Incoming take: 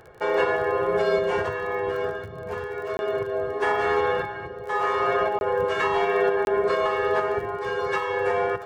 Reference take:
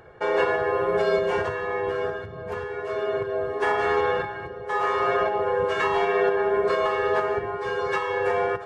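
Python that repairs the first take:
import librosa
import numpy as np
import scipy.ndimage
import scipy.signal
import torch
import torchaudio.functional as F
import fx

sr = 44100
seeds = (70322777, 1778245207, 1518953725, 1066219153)

y = fx.fix_declick_ar(x, sr, threshold=6.5)
y = fx.fix_interpolate(y, sr, at_s=(2.97, 5.39, 6.45), length_ms=21.0)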